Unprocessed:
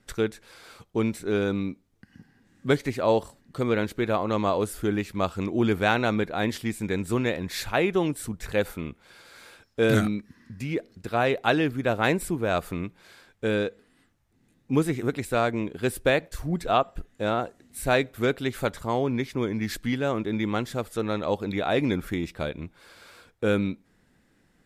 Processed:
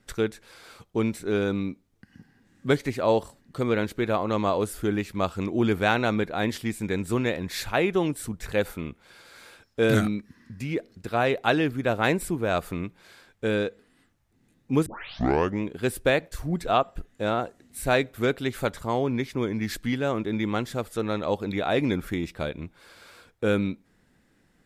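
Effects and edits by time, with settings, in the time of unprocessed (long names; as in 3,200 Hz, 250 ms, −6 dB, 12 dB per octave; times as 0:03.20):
0:14.86: tape start 0.77 s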